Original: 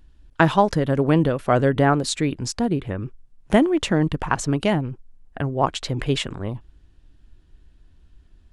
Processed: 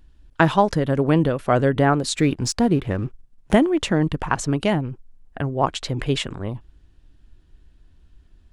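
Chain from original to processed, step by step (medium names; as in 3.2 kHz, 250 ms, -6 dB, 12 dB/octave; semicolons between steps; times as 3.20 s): 2.18–3.55 s: waveshaping leveller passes 1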